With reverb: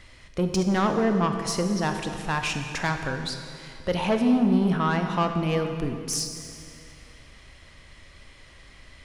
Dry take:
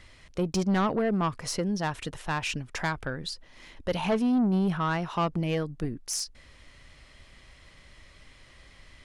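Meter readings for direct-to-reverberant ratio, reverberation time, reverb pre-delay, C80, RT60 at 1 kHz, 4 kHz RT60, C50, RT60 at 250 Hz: 5.5 dB, 2.5 s, 24 ms, 7.0 dB, 2.4 s, 2.1 s, 6.0 dB, 2.7 s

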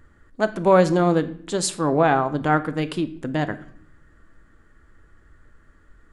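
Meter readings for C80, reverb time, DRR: 19.0 dB, 0.60 s, 11.0 dB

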